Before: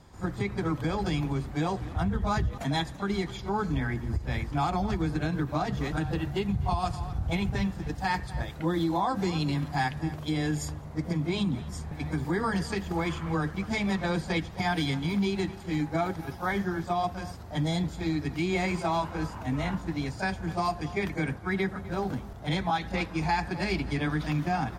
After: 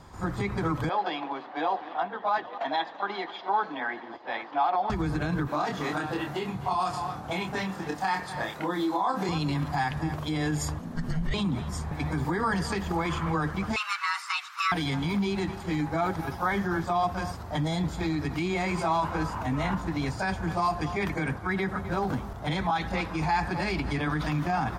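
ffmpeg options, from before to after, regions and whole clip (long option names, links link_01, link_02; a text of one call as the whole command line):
ffmpeg -i in.wav -filter_complex "[0:a]asettb=1/sr,asplit=3[link_01][link_02][link_03];[link_01]atrim=end=0.894[link_04];[link_02]atrim=start=0.89:end=4.9,asetpts=PTS-STARTPTS,afade=type=in:duration=0.004:curve=qsin,afade=type=out:start_time=4.006:duration=0.004:curve=qsin,highpass=frequency=360:width=0.5412,highpass=frequency=360:width=1.3066,equalizer=frequency=410:width_type=q:width=4:gain=-8,equalizer=frequency=740:width_type=q:width=4:gain=4,equalizer=frequency=1300:width_type=q:width=4:gain=-5,equalizer=frequency=2300:width_type=q:width=4:gain=-5,lowpass=frequency=3700:width=0.5412,lowpass=frequency=3700:width=1.3066,aecho=1:1:788:0.0891,atrim=end_sample=176841[link_05];[link_03]atrim=start=4.896[link_06];[link_04][link_05]acrossfade=duration=0.004:curve1=hsin:curve2=qsin[link_07];[link_07][link_06]acrossfade=duration=0.004:curve1=qsin:curve2=hsin,asettb=1/sr,asplit=3[link_08][link_09][link_10];[link_08]atrim=end=5.484[link_11];[link_09]atrim=start=5.48:end=9.29,asetpts=PTS-STARTPTS,afade=type=in:duration=0.004:curve=qsin,afade=type=out:start_time=3.806:duration=0.004:curve=qsin,highpass=250,acompressor=threshold=-31dB:ratio=4:attack=3.2:release=140:knee=1:detection=peak,asplit=2[link_12][link_13];[link_13]adelay=27,volume=-4dB[link_14];[link_12][link_14]amix=inputs=2:normalize=0,atrim=end_sample=168021[link_15];[link_10]atrim=start=9.286[link_16];[link_11][link_15]acrossfade=duration=0.004:curve1=hsin:curve2=qsin[link_17];[link_17][link_16]acrossfade=duration=0.004:curve1=qsin:curve2=hsin,asettb=1/sr,asplit=3[link_18][link_19][link_20];[link_18]atrim=end=10.794[link_21];[link_19]atrim=start=10.79:end=11.34,asetpts=PTS-STARTPTS,afade=type=in:duration=0.004:curve=qsin,afade=type=out:start_time=0.546:duration=0.004:curve=qsin,afreqshift=-320,asubboost=boost=12:cutoff=54[link_22];[link_20]atrim=start=11.336[link_23];[link_21][link_22]acrossfade=duration=0.004:curve1=hsin:curve2=qsin[link_24];[link_24][link_23]acrossfade=duration=0.004:curve1=qsin:curve2=hsin,asettb=1/sr,asplit=3[link_25][link_26][link_27];[link_25]atrim=end=13.764[link_28];[link_26]atrim=start=13.76:end=14.72,asetpts=PTS-STARTPTS,afade=type=in:duration=0.004:curve=qsin,afade=type=out:start_time=0.956:duration=0.004:curve=qsin,highpass=frequency=740:width=0.5412,highpass=frequency=740:width=1.3066,afreqshift=430[link_29];[link_27]atrim=start=14.716[link_30];[link_28][link_29]acrossfade=duration=0.004:curve1=hsin:curve2=qsin[link_31];[link_31][link_30]acrossfade=duration=0.004:curve1=qsin:curve2=hsin,alimiter=level_in=0.5dB:limit=-24dB:level=0:latency=1:release=39,volume=-0.5dB,equalizer=frequency=1100:width_type=o:width=1.1:gain=6,volume=3.5dB" out.wav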